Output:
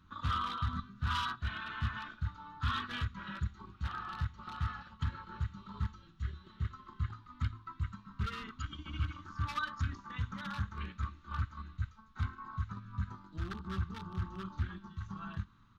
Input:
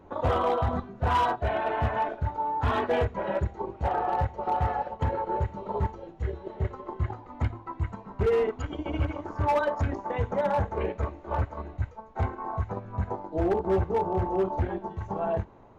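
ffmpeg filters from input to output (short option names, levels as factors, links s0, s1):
-af "firequalizer=gain_entry='entry(200,0);entry(460,-28);entry(720,-28);entry(1200,6);entry(2100,-3);entry(3600,11);entry(7400,2)':delay=0.05:min_phase=1,volume=0.473"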